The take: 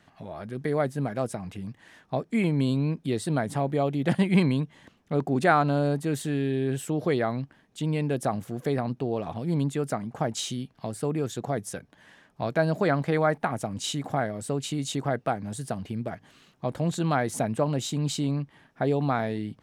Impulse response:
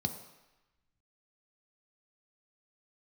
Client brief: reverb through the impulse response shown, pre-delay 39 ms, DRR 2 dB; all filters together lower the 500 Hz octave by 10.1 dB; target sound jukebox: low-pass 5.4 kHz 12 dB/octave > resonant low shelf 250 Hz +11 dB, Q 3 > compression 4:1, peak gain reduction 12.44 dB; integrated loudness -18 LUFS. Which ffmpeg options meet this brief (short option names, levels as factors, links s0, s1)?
-filter_complex "[0:a]equalizer=f=500:t=o:g=-9,asplit=2[s0][s1];[1:a]atrim=start_sample=2205,adelay=39[s2];[s1][s2]afir=irnorm=-1:irlink=0,volume=0.596[s3];[s0][s3]amix=inputs=2:normalize=0,lowpass=5400,lowshelf=f=250:t=q:w=3:g=11,acompressor=threshold=0.562:ratio=4,volume=0.447"